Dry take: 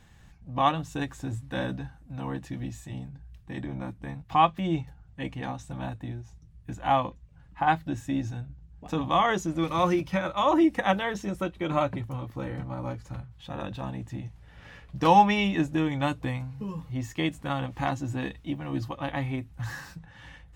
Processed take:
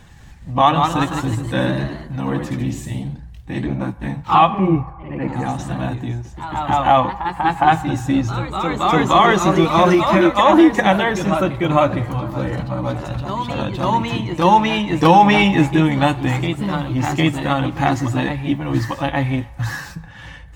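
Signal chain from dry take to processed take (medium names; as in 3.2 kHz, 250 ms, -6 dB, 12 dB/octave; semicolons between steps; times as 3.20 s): coarse spectral quantiser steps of 15 dB; 4.52–5.46 s: boxcar filter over 13 samples; ever faster or slower copies 209 ms, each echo +1 st, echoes 3, each echo -6 dB; on a send at -15 dB: high-pass 630 Hz 24 dB/octave + reverberation RT60 1.6 s, pre-delay 3 ms; on the sum: loudness maximiser +12.5 dB; trim -1 dB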